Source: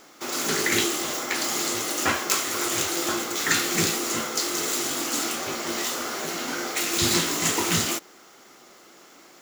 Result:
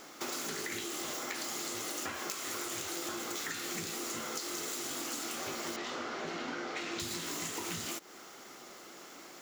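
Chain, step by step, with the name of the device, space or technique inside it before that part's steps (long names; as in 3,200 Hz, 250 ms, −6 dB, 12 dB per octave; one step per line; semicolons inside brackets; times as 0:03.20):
0:05.76–0:07.00: high-frequency loss of the air 170 metres
serial compression, leveller first (downward compressor, threshold −25 dBFS, peak gain reduction 8 dB; downward compressor 6 to 1, threshold −36 dBFS, peak gain reduction 12.5 dB)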